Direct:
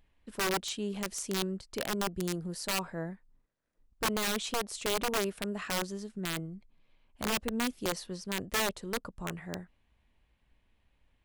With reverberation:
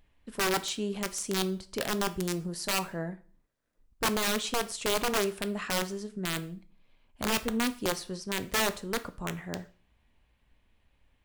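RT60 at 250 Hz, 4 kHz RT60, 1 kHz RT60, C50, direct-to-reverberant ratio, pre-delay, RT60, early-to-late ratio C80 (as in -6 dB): 0.45 s, 0.40 s, 0.40 s, 17.5 dB, 11.0 dB, 4 ms, 0.40 s, 22.0 dB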